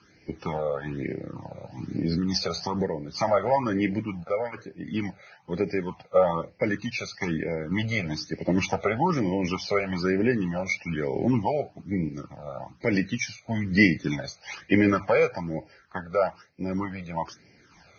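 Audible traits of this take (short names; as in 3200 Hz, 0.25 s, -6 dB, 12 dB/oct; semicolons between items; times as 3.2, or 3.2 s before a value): random-step tremolo; phasing stages 12, 1.1 Hz, lowest notch 290–1200 Hz; Vorbis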